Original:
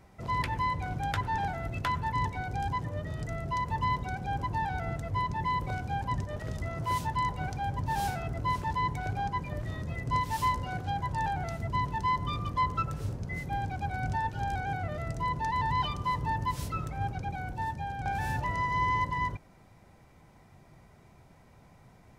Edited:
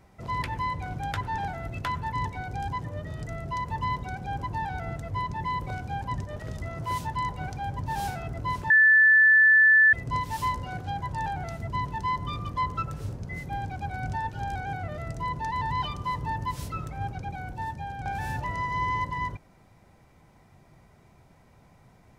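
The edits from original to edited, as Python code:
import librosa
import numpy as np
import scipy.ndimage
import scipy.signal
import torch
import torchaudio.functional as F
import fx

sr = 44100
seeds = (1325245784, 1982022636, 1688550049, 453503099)

y = fx.edit(x, sr, fx.bleep(start_s=8.7, length_s=1.23, hz=1750.0, db=-14.0), tone=tone)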